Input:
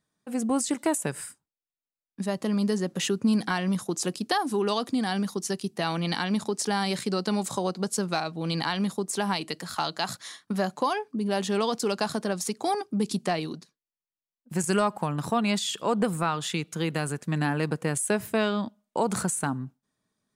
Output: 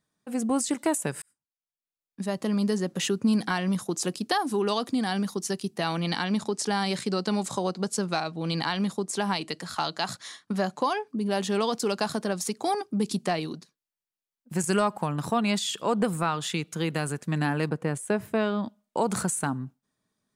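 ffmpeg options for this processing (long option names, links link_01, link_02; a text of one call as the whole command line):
ffmpeg -i in.wav -filter_complex "[0:a]asettb=1/sr,asplit=3[link_01][link_02][link_03];[link_01]atrim=end=6.094[link_04];[link_02]atrim=start=6.09:end=11.07,asetpts=PTS-STARTPTS,afade=type=in:duration=0.004:curve=qsin,afade=type=out:start_time=4.976:duration=0.004:curve=qsin,lowpass=10000[link_05];[link_03]atrim=start=11.066[link_06];[link_04][link_05]acrossfade=duration=0.004:curve1=hsin:curve2=qsin[link_07];[link_07][link_06]acrossfade=duration=0.004:curve1=qsin:curve2=hsin,asettb=1/sr,asplit=3[link_08][link_09][link_10];[link_08]atrim=end=17.694[link_11];[link_09]atrim=start=17.69:end=18.64,asetpts=PTS-STARTPTS,afade=type=in:duration=0.004:curve=qsin,afade=type=out:start_time=0.946:duration=0.004:curve=qsin,highshelf=frequency=2800:gain=-10.5[link_12];[link_10]atrim=start=18.636[link_13];[link_11][link_12]acrossfade=duration=0.004:curve1=hsin:curve2=qsin[link_14];[link_14][link_13]acrossfade=duration=0.004:curve1=qsin:curve2=hsin,asplit=2[link_15][link_16];[link_15]atrim=end=1.22,asetpts=PTS-STARTPTS,afade=type=out:start_time=1.216:duration=0.004:curve=hsin[link_17];[link_16]atrim=start=1.22,asetpts=PTS-STARTPTS,afade=type=in:duration=1.17[link_18];[link_17][link_18]concat=n=2:v=0:a=1" out.wav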